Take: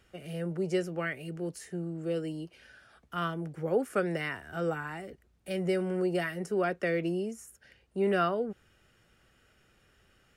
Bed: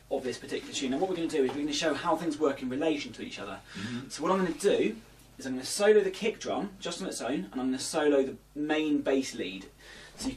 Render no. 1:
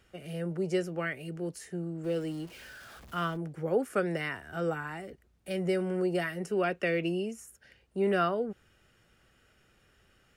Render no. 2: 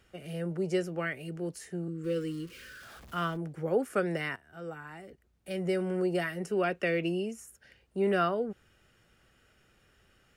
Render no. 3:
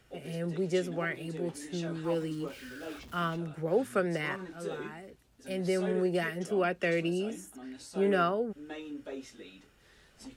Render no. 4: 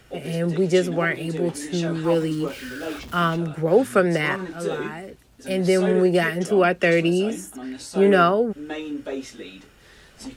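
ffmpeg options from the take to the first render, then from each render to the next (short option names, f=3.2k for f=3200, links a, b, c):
-filter_complex "[0:a]asettb=1/sr,asplit=3[a][b][c];[a]atrim=end=2.044[d];[b]atrim=start=2.04:end=3.37,asetpts=PTS-STARTPTS,afade=t=in:d=0.004:c=qsin,afade=t=out:st=1.326:d=0.004:c=qsin,aeval=exprs='val(0)+0.5*0.00447*sgn(val(0))':c=same[e];[c]atrim=start=3.366[f];[d][e]acrossfade=d=0.004:c1=hsin:c2=qsin[g];[g][f]acrossfade=d=0.004:c1=qsin:c2=hsin,asettb=1/sr,asplit=3[h][i][j];[h]atrim=end=6.444[k];[i]atrim=start=6.44:end=7.4,asetpts=PTS-STARTPTS,afade=t=in:d=0.004:c=qsin,afade=t=out:st=0.956:d=0.004:c=qsin,equalizer=f=2.7k:t=o:w=0.35:g=9[l];[j]atrim=start=7.396[m];[k][l]acrossfade=d=0.004:c1=hsin:c2=qsin[n];[n][m]acrossfade=d=0.004:c1=qsin:c2=hsin"
-filter_complex "[0:a]asettb=1/sr,asplit=3[a][b][c];[a]atrim=end=1.884[d];[b]atrim=start=1.88:end=2.83,asetpts=PTS-STARTPTS,afade=t=in:d=0.004:c=qsin,afade=t=out:st=0.946:d=0.004:c=qsin,asuperstop=centerf=770:order=12:qfactor=1.6[e];[c]atrim=start=2.826[f];[d][e]acrossfade=d=0.004:c1=hsin:c2=qsin[g];[g][f]acrossfade=d=0.004:c1=qsin:c2=hsin,asplit=2[h][i];[h]atrim=end=4.36,asetpts=PTS-STARTPTS,afade=t=out:st=4.356:d=0.004:c=hsin:silence=0.16788[j];[i]atrim=start=4.36,asetpts=PTS-STARTPTS,afade=t=in:d=1.53:silence=0.16788[k];[j][k]concat=n=2:v=0:a=1"
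-filter_complex "[1:a]volume=-14dB[a];[0:a][a]amix=inputs=2:normalize=0"
-af "volume=11dB"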